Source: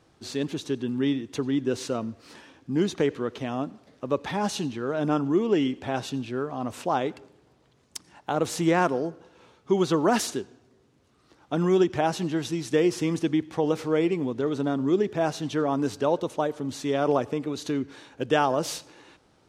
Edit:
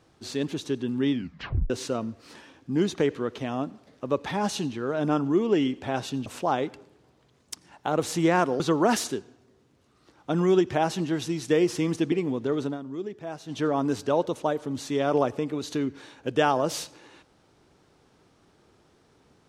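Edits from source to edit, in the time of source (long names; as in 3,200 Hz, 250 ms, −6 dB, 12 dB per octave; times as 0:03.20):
0:01.12: tape stop 0.58 s
0:06.26–0:06.69: remove
0:09.03–0:09.83: remove
0:13.35–0:14.06: remove
0:14.57–0:15.54: duck −11 dB, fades 0.15 s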